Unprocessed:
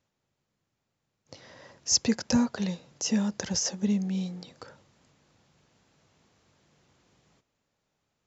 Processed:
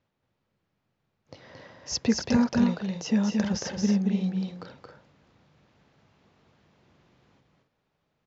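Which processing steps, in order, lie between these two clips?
distance through air 180 m; on a send: loudspeakers at several distances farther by 77 m -4 dB, 93 m -10 dB; on the sum: trim +2.5 dB

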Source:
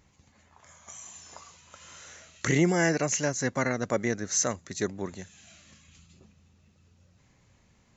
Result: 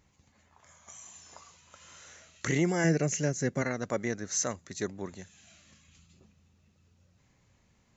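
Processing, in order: 2.84–3.62 s: fifteen-band graphic EQ 160 Hz +9 dB, 400 Hz +6 dB, 1 kHz -9 dB, 4 kHz -4 dB; trim -4 dB

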